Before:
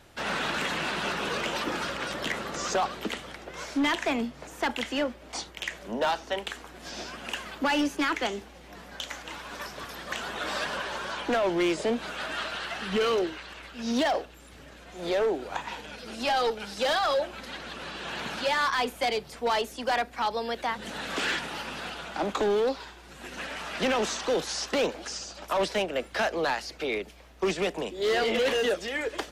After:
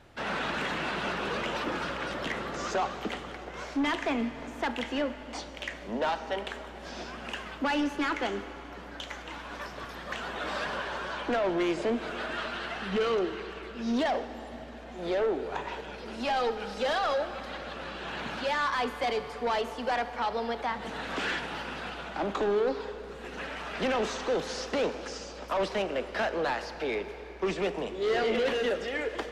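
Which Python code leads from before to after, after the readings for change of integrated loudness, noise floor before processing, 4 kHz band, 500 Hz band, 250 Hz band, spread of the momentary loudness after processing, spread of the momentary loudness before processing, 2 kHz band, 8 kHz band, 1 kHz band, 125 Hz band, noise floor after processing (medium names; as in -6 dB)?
-2.5 dB, -49 dBFS, -5.0 dB, -1.5 dB, -1.0 dB, 11 LU, 13 LU, -2.5 dB, -8.0 dB, -1.5 dB, 0.0 dB, -44 dBFS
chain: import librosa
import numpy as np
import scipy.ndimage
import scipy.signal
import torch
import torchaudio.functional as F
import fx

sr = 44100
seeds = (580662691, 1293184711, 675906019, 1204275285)

y = fx.lowpass(x, sr, hz=2600.0, slope=6)
y = 10.0 ** (-22.5 / 20.0) * np.tanh(y / 10.0 ** (-22.5 / 20.0))
y = fx.rev_plate(y, sr, seeds[0], rt60_s=4.3, hf_ratio=0.75, predelay_ms=0, drr_db=9.5)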